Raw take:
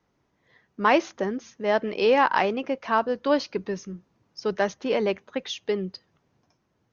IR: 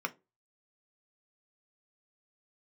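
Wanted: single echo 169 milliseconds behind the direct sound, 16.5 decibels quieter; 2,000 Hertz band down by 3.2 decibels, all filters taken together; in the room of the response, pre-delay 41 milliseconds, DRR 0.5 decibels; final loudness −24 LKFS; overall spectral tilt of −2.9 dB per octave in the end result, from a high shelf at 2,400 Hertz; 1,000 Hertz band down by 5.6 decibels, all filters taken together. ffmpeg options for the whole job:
-filter_complex "[0:a]equalizer=frequency=1000:width_type=o:gain=-7,equalizer=frequency=2000:width_type=o:gain=-5,highshelf=frequency=2400:gain=6.5,aecho=1:1:169:0.15,asplit=2[link_01][link_02];[1:a]atrim=start_sample=2205,adelay=41[link_03];[link_02][link_03]afir=irnorm=-1:irlink=0,volume=-5.5dB[link_04];[link_01][link_04]amix=inputs=2:normalize=0,volume=1.5dB"

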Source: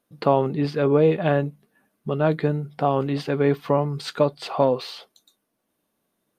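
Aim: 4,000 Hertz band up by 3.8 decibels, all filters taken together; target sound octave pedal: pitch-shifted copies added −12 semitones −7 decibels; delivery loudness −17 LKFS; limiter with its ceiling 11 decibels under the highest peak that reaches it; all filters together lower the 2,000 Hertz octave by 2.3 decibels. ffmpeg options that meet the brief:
ffmpeg -i in.wav -filter_complex "[0:a]equalizer=frequency=2000:width_type=o:gain=-4.5,equalizer=frequency=4000:width_type=o:gain=5.5,alimiter=limit=-15.5dB:level=0:latency=1,asplit=2[link_01][link_02];[link_02]asetrate=22050,aresample=44100,atempo=2,volume=-7dB[link_03];[link_01][link_03]amix=inputs=2:normalize=0,volume=10dB" out.wav

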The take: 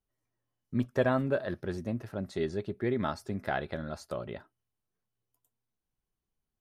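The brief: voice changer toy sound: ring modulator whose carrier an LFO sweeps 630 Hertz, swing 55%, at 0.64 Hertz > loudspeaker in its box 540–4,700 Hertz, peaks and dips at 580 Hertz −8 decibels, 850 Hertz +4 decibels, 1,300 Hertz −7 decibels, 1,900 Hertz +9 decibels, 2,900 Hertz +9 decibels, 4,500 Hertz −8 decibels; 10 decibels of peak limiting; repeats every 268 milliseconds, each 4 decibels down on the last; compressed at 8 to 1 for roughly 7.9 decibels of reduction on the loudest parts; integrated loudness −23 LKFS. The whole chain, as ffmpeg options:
ffmpeg -i in.wav -af "acompressor=threshold=-30dB:ratio=8,alimiter=level_in=5dB:limit=-24dB:level=0:latency=1,volume=-5dB,aecho=1:1:268|536|804|1072|1340|1608|1876|2144|2412:0.631|0.398|0.25|0.158|0.0994|0.0626|0.0394|0.0249|0.0157,aeval=exprs='val(0)*sin(2*PI*630*n/s+630*0.55/0.64*sin(2*PI*0.64*n/s))':channel_layout=same,highpass=540,equalizer=frequency=580:width_type=q:width=4:gain=-8,equalizer=frequency=850:width_type=q:width=4:gain=4,equalizer=frequency=1300:width_type=q:width=4:gain=-7,equalizer=frequency=1900:width_type=q:width=4:gain=9,equalizer=frequency=2900:width_type=q:width=4:gain=9,equalizer=frequency=4500:width_type=q:width=4:gain=-8,lowpass=frequency=4700:width=0.5412,lowpass=frequency=4700:width=1.3066,volume=20dB" out.wav

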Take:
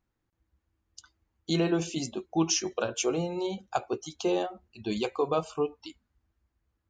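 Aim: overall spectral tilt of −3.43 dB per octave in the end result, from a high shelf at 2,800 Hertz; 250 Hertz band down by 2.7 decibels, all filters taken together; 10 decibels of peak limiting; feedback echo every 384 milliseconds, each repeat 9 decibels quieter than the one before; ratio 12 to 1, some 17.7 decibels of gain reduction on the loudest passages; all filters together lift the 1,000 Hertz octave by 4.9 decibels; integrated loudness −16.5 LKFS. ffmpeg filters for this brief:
ffmpeg -i in.wav -af "equalizer=frequency=250:width_type=o:gain=-5.5,equalizer=frequency=1000:width_type=o:gain=6.5,highshelf=frequency=2800:gain=4.5,acompressor=threshold=-38dB:ratio=12,alimiter=level_in=7.5dB:limit=-24dB:level=0:latency=1,volume=-7.5dB,aecho=1:1:384|768|1152|1536:0.355|0.124|0.0435|0.0152,volume=27.5dB" out.wav

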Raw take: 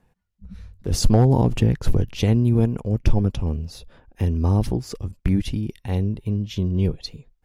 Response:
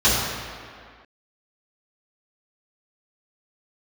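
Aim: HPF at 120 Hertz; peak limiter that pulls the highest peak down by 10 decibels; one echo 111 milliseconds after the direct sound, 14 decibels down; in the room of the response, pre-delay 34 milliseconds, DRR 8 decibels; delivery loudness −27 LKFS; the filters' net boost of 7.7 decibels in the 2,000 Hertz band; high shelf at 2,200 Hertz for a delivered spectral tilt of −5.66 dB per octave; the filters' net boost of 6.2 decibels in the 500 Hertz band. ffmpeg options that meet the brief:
-filter_complex "[0:a]highpass=120,equalizer=frequency=500:width_type=o:gain=7,equalizer=frequency=2000:width_type=o:gain=4.5,highshelf=frequency=2200:gain=8,alimiter=limit=-11.5dB:level=0:latency=1,aecho=1:1:111:0.2,asplit=2[link_01][link_02];[1:a]atrim=start_sample=2205,adelay=34[link_03];[link_02][link_03]afir=irnorm=-1:irlink=0,volume=-29dB[link_04];[link_01][link_04]amix=inputs=2:normalize=0,volume=-4dB"

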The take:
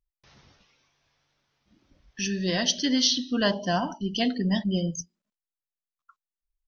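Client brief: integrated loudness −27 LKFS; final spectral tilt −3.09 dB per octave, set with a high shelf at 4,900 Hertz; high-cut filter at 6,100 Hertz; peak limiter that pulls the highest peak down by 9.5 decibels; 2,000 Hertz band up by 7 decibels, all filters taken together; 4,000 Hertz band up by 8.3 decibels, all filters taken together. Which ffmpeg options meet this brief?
ffmpeg -i in.wav -af "lowpass=6100,equalizer=frequency=2000:width_type=o:gain=6,equalizer=frequency=4000:width_type=o:gain=7,highshelf=frequency=4900:gain=5.5,volume=-3.5dB,alimiter=limit=-14.5dB:level=0:latency=1" out.wav

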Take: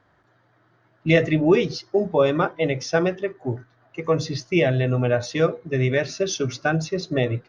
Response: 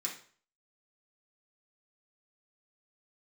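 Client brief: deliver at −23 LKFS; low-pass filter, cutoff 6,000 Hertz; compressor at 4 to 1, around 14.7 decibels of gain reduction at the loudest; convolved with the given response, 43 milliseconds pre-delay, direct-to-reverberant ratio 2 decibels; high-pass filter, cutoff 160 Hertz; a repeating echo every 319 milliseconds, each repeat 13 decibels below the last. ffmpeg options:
-filter_complex "[0:a]highpass=160,lowpass=6000,acompressor=threshold=-31dB:ratio=4,aecho=1:1:319|638|957:0.224|0.0493|0.0108,asplit=2[link_01][link_02];[1:a]atrim=start_sample=2205,adelay=43[link_03];[link_02][link_03]afir=irnorm=-1:irlink=0,volume=-3.5dB[link_04];[link_01][link_04]amix=inputs=2:normalize=0,volume=9.5dB"

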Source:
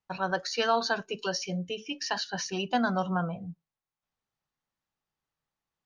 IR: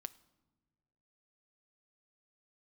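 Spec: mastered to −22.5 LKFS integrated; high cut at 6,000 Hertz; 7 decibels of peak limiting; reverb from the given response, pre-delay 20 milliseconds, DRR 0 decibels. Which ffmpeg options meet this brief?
-filter_complex "[0:a]lowpass=6000,alimiter=limit=-20dB:level=0:latency=1,asplit=2[link_01][link_02];[1:a]atrim=start_sample=2205,adelay=20[link_03];[link_02][link_03]afir=irnorm=-1:irlink=0,volume=4dB[link_04];[link_01][link_04]amix=inputs=2:normalize=0,volume=7dB"

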